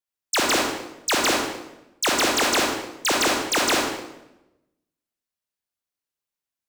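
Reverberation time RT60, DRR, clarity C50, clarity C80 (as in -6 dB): 0.90 s, -1.5 dB, 0.5 dB, 4.0 dB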